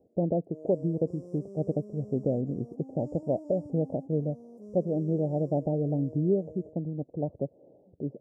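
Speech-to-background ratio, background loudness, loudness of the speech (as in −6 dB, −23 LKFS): 16.5 dB, −47.0 LKFS, −30.5 LKFS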